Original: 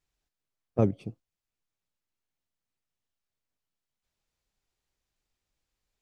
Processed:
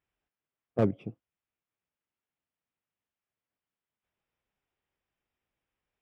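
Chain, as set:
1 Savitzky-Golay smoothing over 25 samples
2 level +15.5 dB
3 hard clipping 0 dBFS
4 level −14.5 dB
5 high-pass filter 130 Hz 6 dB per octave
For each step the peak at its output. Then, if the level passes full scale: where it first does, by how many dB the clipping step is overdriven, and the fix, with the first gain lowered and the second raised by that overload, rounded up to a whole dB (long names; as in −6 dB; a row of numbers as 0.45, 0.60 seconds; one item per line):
−9.5, +6.0, 0.0, −14.5, −13.0 dBFS
step 2, 6.0 dB
step 2 +9.5 dB, step 4 −8.5 dB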